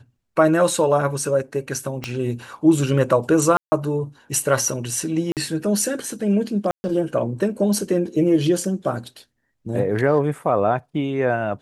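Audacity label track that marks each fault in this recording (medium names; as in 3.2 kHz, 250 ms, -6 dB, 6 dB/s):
2.040000	2.040000	pop -12 dBFS
3.570000	3.720000	dropout 150 ms
5.320000	5.370000	dropout 48 ms
6.710000	6.840000	dropout 130 ms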